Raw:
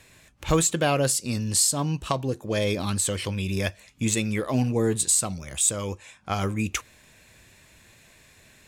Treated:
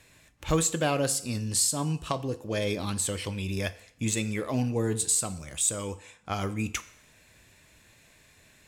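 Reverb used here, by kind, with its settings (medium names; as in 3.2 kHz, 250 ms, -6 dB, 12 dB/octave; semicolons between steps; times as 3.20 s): FDN reverb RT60 0.7 s, low-frequency decay 0.75×, high-frequency decay 0.9×, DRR 12 dB; trim -4 dB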